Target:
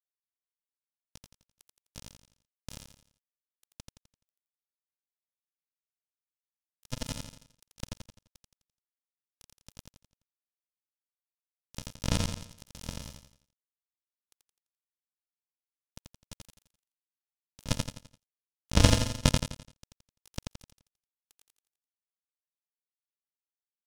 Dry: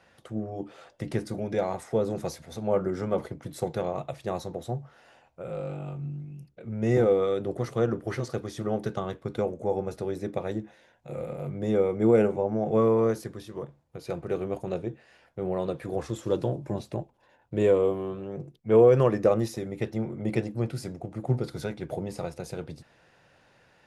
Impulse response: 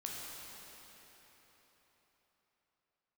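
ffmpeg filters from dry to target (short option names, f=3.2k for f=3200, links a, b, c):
-filter_complex "[0:a]highpass=f=110:p=1,equalizer=f=2.2k:t=o:w=1.3:g=-6.5,aresample=11025,acrusher=samples=29:mix=1:aa=0.000001,aresample=44100,aeval=exprs='0.398*(cos(1*acos(clip(val(0)/0.398,-1,1)))-cos(1*PI/2))+0.141*(cos(3*acos(clip(val(0)/0.398,-1,1)))-cos(3*PI/2))':c=same,aeval=exprs='sgn(val(0))*max(abs(val(0))-0.00562,0)':c=same,asplit=2[a][b];[b]aecho=0:1:85|170|255|340|425:0.668|0.274|0.112|0.0461|0.0189[c];[a][c]amix=inputs=2:normalize=0,aexciter=amount=1.5:drive=7.8:freq=2.7k,volume=3dB"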